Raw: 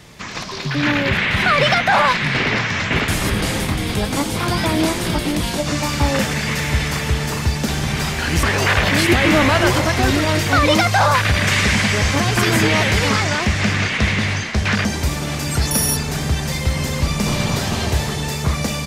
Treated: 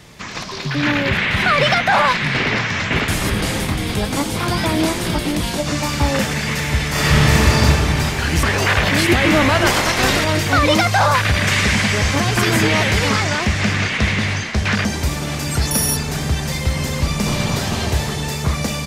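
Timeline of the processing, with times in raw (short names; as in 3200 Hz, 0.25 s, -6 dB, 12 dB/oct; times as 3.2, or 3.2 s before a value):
6.9–7.63 reverb throw, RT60 2.6 s, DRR -8.5 dB
9.65–10.23 spectral limiter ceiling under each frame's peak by 14 dB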